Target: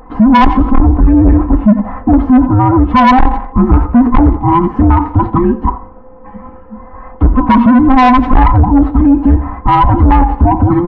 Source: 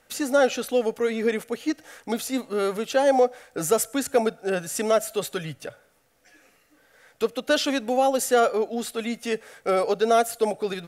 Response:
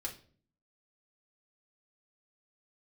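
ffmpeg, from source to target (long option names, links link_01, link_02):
-filter_complex "[0:a]afftfilt=real='real(if(between(b,1,1008),(2*floor((b-1)/24)+1)*24-b,b),0)':imag='imag(if(between(b,1,1008),(2*floor((b-1)/24)+1)*24-b,b),0)*if(between(b,1,1008),-1,1)':win_size=2048:overlap=0.75,lowpass=frequency=1100:width=0.5412,lowpass=frequency=1100:width=1.3066,lowshelf=frequency=160:gain=6.5,aecho=1:1:3.9:0.73,adynamicequalizer=threshold=0.02:dfrequency=230:dqfactor=1.3:tfrequency=230:tqfactor=1.3:attack=5:release=100:ratio=0.375:range=2.5:mode=boostabove:tftype=bell,dynaudnorm=framelen=350:gausssize=9:maxgain=10.5dB,flanger=delay=8.4:depth=3.3:regen=-69:speed=1:shape=triangular,asoftclip=type=tanh:threshold=-19.5dB,asplit=2[link_01][link_02];[link_02]aecho=0:1:87|174|261:0.0794|0.0294|0.0109[link_03];[link_01][link_03]amix=inputs=2:normalize=0,alimiter=level_in=29.5dB:limit=-1dB:release=50:level=0:latency=1,volume=-1dB"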